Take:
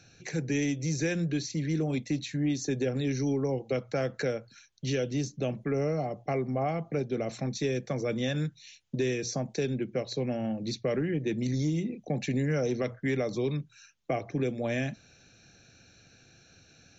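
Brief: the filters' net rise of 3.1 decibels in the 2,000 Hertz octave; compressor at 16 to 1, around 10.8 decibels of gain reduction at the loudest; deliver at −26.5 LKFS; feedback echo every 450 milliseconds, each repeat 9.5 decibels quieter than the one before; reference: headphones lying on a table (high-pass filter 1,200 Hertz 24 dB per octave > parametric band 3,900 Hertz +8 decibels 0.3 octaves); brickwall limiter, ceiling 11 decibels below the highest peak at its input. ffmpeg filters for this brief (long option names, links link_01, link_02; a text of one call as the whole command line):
ffmpeg -i in.wav -af "equalizer=frequency=2000:width_type=o:gain=3.5,acompressor=threshold=-35dB:ratio=16,alimiter=level_in=10.5dB:limit=-24dB:level=0:latency=1,volume=-10.5dB,highpass=frequency=1200:width=0.5412,highpass=frequency=1200:width=1.3066,equalizer=frequency=3900:width_type=o:width=0.3:gain=8,aecho=1:1:450|900|1350|1800:0.335|0.111|0.0365|0.012,volume=22.5dB" out.wav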